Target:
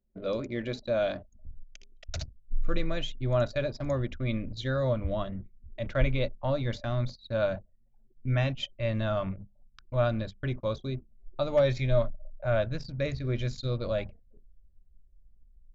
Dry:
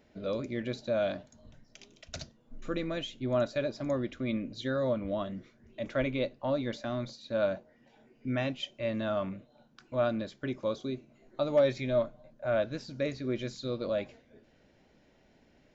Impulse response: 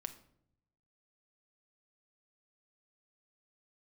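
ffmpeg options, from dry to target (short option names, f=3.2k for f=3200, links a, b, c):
-af "bandreject=f=50:t=h:w=6,bandreject=f=100:t=h:w=6,bandreject=f=150:t=h:w=6,bandreject=f=200:t=h:w=6,bandreject=f=250:t=h:w=6,anlmdn=0.0158,asubboost=boost=10.5:cutoff=83,volume=2.5dB"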